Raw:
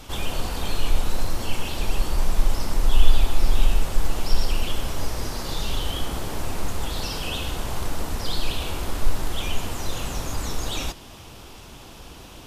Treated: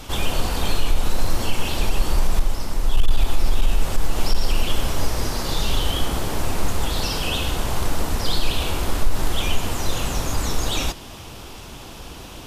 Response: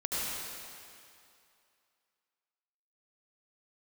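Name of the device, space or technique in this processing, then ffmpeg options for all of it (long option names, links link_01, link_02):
clipper into limiter: -af "asoftclip=type=hard:threshold=-6.5dB,alimiter=limit=-12.5dB:level=0:latency=1:release=109,volume=5dB"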